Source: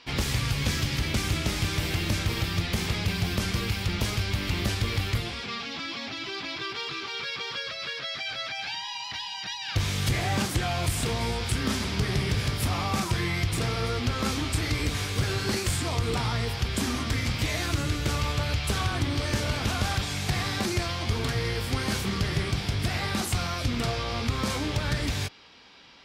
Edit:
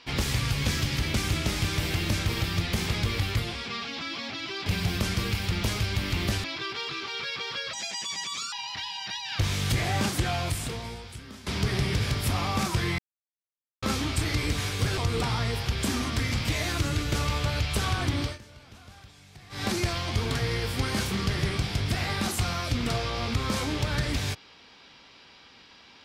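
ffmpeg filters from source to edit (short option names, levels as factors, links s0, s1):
-filter_complex "[0:a]asplit=12[s0][s1][s2][s3][s4][s5][s6][s7][s8][s9][s10][s11];[s0]atrim=end=3.032[s12];[s1]atrim=start=4.808:end=6.442[s13];[s2]atrim=start=3.028:end=4.812[s14];[s3]atrim=start=6.438:end=7.734[s15];[s4]atrim=start=7.73:end=8.89,asetpts=PTS-STARTPTS,asetrate=64386,aresample=44100,atrim=end_sample=35038,asetpts=PTS-STARTPTS[s16];[s5]atrim=start=8.886:end=11.83,asetpts=PTS-STARTPTS,afade=t=out:st=1.814:d=1.13:c=qua:silence=0.125893[s17];[s6]atrim=start=11.83:end=13.35,asetpts=PTS-STARTPTS,afade=t=in:d=0.004:c=hsin:silence=0.125893,afade=t=out:st=1.516:d=0.004:c=hsin[s18];[s7]atrim=start=13.35:end=14.19,asetpts=PTS-STARTPTS,volume=0[s19];[s8]atrim=start=14.19:end=15.342,asetpts=PTS-STARTPTS,afade=t=in:d=0.004:c=hsin[s20];[s9]atrim=start=15.908:end=19.32,asetpts=PTS-STARTPTS,afade=t=out:st=3.242:d=0.17:silence=0.0794328[s21];[s10]atrim=start=19.32:end=20.43,asetpts=PTS-STARTPTS,volume=0.0794[s22];[s11]atrim=start=20.43,asetpts=PTS-STARTPTS,afade=t=in:d=0.17:silence=0.0794328[s23];[s12][s13]acrossfade=d=0.004:c1=hsin:c2=hsin[s24];[s24][s14]acrossfade=d=0.004:c1=hsin:c2=hsin[s25];[s25][s15]acrossfade=d=0.004:c1=hsin:c2=hsin[s26];[s26][s16]acrossfade=d=0.004:c1=hsin:c2=hsin[s27];[s17][s18][s19][s20]concat=n=4:v=0:a=1[s28];[s27][s28]acrossfade=d=0.004:c1=hsin:c2=hsin[s29];[s21][s22][s23]concat=n=3:v=0:a=1[s30];[s29][s30]acrossfade=d=0.004:c1=hsin:c2=hsin"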